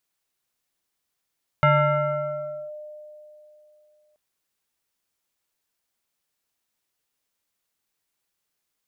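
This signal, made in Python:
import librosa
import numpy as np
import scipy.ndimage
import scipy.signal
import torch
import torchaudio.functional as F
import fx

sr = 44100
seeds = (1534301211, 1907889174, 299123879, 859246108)

y = fx.fm2(sr, length_s=2.53, level_db=-13.0, carrier_hz=604.0, ratio=1.24, index=1.6, index_s=1.08, decay_s=3.09, shape='linear')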